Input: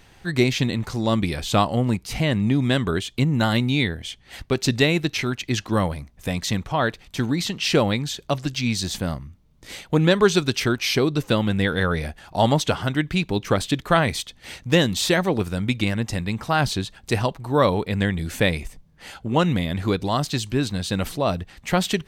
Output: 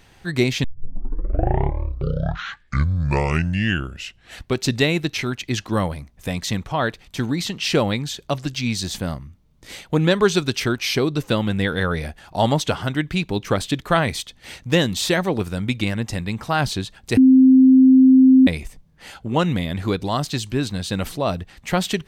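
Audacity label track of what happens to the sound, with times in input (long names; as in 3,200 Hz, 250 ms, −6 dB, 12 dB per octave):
0.640000	0.640000	tape start 3.99 s
17.170000	18.470000	beep over 261 Hz −7.5 dBFS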